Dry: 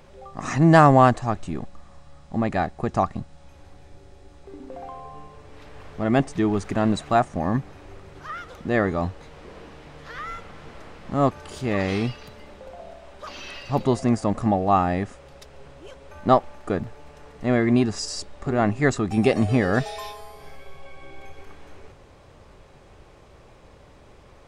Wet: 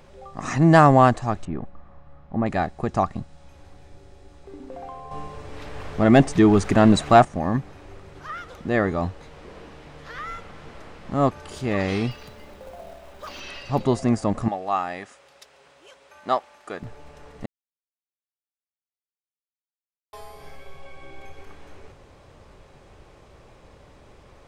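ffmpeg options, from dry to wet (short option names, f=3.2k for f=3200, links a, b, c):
-filter_complex "[0:a]asettb=1/sr,asplit=3[a][b][c];[a]atrim=end=1.454[d];[b]atrim=start=1.45:end=2.46,asetpts=PTS-STARTPTS,afade=t=in:d=0.004:c=qsin,afade=t=out:st=1.006:d=0.004:c=qsin,lowpass=1.8k[e];[c]atrim=start=2.456[f];[d][e]acrossfade=d=0.004:c1=hsin:c2=qsin[g];[g][f]acrossfade=d=0.004:c1=qsin:c2=hsin,asettb=1/sr,asplit=3[h][i][j];[h]atrim=end=5.114[k];[i]atrim=start=5.11:end=7.25,asetpts=PTS-STARTPTS,afade=t=in:d=0.004:c=qsin,afade=t=out:st=2.136:d=0.004:c=qsin,acontrast=90[l];[j]atrim=start=7.246[m];[k][l]acrossfade=d=0.004:c1=hsin:c2=qsin[n];[n][m]acrossfade=d=0.004:c1=qsin:c2=hsin,asettb=1/sr,asplit=3[o][p][q];[o]atrim=end=12.114[r];[p]atrim=start=12.11:end=13.4,asetpts=PTS-STARTPTS,afade=t=in:d=0.004:c=qsin,afade=t=out:st=1.286:d=0.004:c=qsin,acrusher=bits=5:mode=log:mix=0:aa=0.000001[s];[q]atrim=start=13.396[t];[r][s]acrossfade=d=0.004:c1=hsin:c2=qsin[u];[u][t]acrossfade=d=0.004:c1=qsin:c2=hsin,asettb=1/sr,asplit=3[v][w][x];[v]atrim=end=14.484[y];[w]atrim=start=14.48:end=16.83,asetpts=PTS-STARTPTS,afade=t=in:d=0.004:c=qsin,afade=t=out:st=2.346:d=0.004:c=qsin,highpass=f=1.2k:p=1[z];[x]atrim=start=16.826[aa];[y][z]acrossfade=d=0.004:c1=hsin:c2=qsin[ab];[ab][aa]acrossfade=d=0.004:c1=qsin:c2=hsin,asplit=3[ac][ad][ae];[ac]atrim=end=17.46,asetpts=PTS-STARTPTS,afade=t=out:st=17.456:d=0.004:c=hsin[af];[ad]atrim=start=17.46:end=20.13,asetpts=PTS-STARTPTS,volume=0[ag];[ae]atrim=start=20.13,asetpts=PTS-STARTPTS,afade=t=in:d=0.004:c=hsin[ah];[af][ag][ah]concat=n=3:v=0:a=1"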